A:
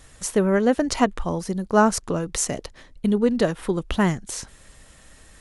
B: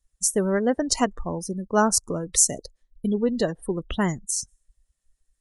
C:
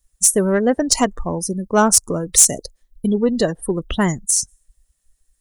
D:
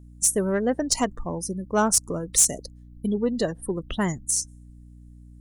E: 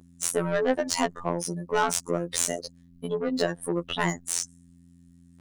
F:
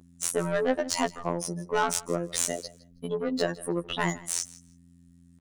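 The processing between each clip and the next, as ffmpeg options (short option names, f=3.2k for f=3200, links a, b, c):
-af "bass=f=250:g=-1,treble=f=4k:g=11,afftdn=nr=34:nf=-29,volume=-3dB"
-af "highshelf=f=9.1k:g=10.5,acontrast=84,volume=-1dB"
-af "aeval=exprs='val(0)+0.0126*(sin(2*PI*60*n/s)+sin(2*PI*2*60*n/s)/2+sin(2*PI*3*60*n/s)/3+sin(2*PI*4*60*n/s)/4+sin(2*PI*5*60*n/s)/5)':c=same,volume=-7dB"
-filter_complex "[0:a]asplit=2[a][b];[b]highpass=f=720:p=1,volume=22dB,asoftclip=type=tanh:threshold=-7.5dB[c];[a][c]amix=inputs=2:normalize=0,lowpass=f=3.9k:p=1,volume=-6dB,afftfilt=real='hypot(re,im)*cos(PI*b)':imag='0':win_size=2048:overlap=0.75,volume=-4dB"
-af "aecho=1:1:161|322:0.1|0.017,volume=-1.5dB"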